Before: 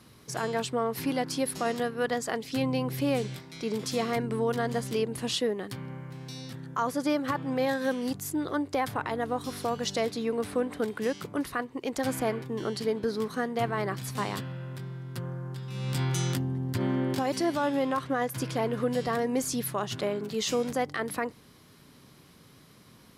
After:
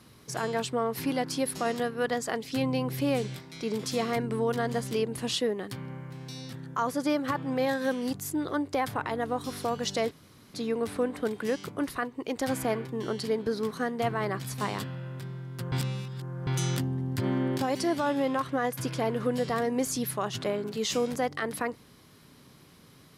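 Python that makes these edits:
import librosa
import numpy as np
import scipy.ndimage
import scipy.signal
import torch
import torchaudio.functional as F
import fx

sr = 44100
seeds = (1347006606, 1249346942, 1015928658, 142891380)

y = fx.edit(x, sr, fx.insert_room_tone(at_s=10.11, length_s=0.43),
    fx.reverse_span(start_s=15.29, length_s=0.75), tone=tone)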